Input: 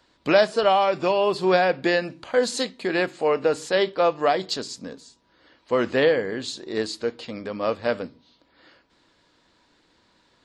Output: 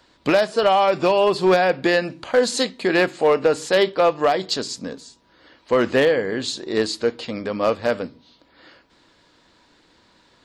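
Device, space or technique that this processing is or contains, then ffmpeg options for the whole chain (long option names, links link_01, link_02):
limiter into clipper: -af "alimiter=limit=-12dB:level=0:latency=1:release=386,asoftclip=type=hard:threshold=-15dB,volume=5.5dB"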